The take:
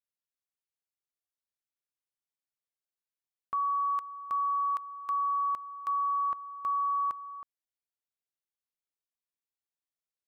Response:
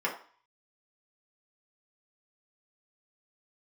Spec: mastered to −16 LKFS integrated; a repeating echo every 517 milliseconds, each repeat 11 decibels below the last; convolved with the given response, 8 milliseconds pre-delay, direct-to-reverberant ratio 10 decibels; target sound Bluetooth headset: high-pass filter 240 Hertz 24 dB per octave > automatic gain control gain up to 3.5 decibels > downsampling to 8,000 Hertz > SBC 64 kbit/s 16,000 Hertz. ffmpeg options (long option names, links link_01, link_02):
-filter_complex "[0:a]aecho=1:1:517|1034|1551:0.282|0.0789|0.0221,asplit=2[link_01][link_02];[1:a]atrim=start_sample=2205,adelay=8[link_03];[link_02][link_03]afir=irnorm=-1:irlink=0,volume=-19dB[link_04];[link_01][link_04]amix=inputs=2:normalize=0,highpass=frequency=240:width=0.5412,highpass=frequency=240:width=1.3066,dynaudnorm=maxgain=3.5dB,aresample=8000,aresample=44100,volume=11dB" -ar 16000 -c:a sbc -b:a 64k